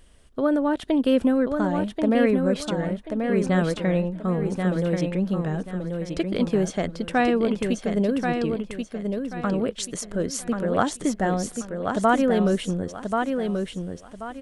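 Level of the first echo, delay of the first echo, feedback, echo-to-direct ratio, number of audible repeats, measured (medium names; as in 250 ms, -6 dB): -5.0 dB, 1084 ms, 29%, -4.5 dB, 3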